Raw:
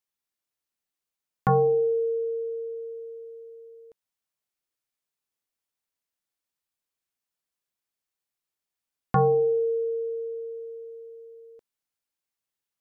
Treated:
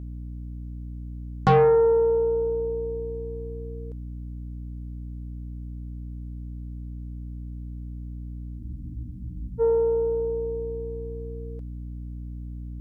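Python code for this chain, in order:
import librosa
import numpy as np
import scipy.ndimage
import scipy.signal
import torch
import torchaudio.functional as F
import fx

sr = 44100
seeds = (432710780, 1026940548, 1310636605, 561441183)

y = fx.dmg_buzz(x, sr, base_hz=60.0, harmonics=5, level_db=-41.0, tilt_db=-7, odd_only=False)
y = fx.cheby_harmonics(y, sr, harmonics=(4, 5, 7), levels_db=(-20, -21, -34), full_scale_db=-14.0)
y = fx.spec_freeze(y, sr, seeds[0], at_s=8.61, hold_s=0.98)
y = y * librosa.db_to_amplitude(3.5)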